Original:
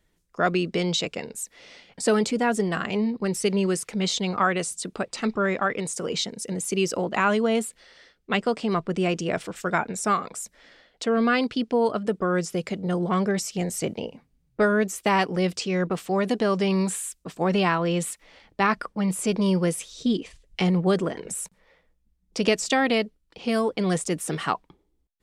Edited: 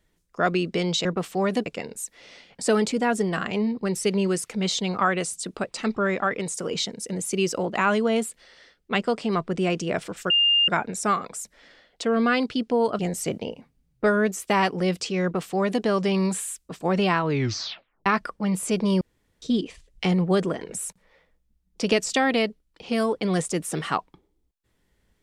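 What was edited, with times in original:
0:09.69: insert tone 2,810 Hz −16 dBFS 0.38 s
0:12.00–0:13.55: remove
0:15.79–0:16.40: duplicate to 0:01.05
0:17.77: tape stop 0.85 s
0:19.57–0:19.98: fill with room tone

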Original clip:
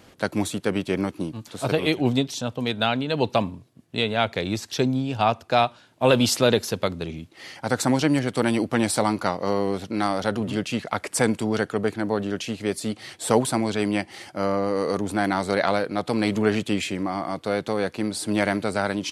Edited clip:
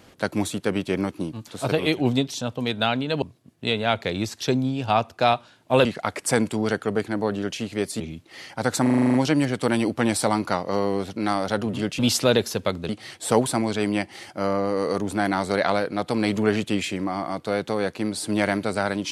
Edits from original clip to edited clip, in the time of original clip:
0:03.22–0:03.53: remove
0:06.16–0:07.06: swap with 0:10.73–0:12.88
0:07.88: stutter 0.04 s, 9 plays

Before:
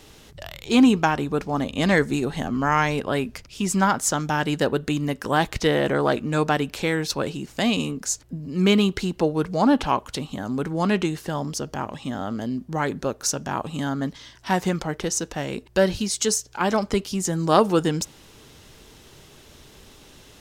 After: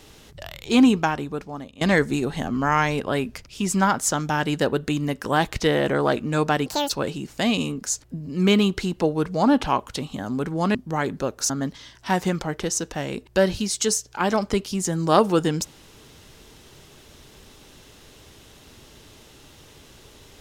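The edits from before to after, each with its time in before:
0:00.85–0:01.81: fade out, to −20.5 dB
0:06.66–0:07.09: play speed 181%
0:10.94–0:12.57: remove
0:13.32–0:13.90: remove

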